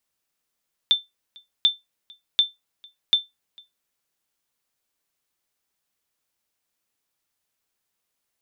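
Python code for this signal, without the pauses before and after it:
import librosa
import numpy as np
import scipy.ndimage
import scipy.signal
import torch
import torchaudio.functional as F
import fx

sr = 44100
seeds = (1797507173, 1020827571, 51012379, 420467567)

y = fx.sonar_ping(sr, hz=3550.0, decay_s=0.18, every_s=0.74, pings=4, echo_s=0.45, echo_db=-28.5, level_db=-9.0)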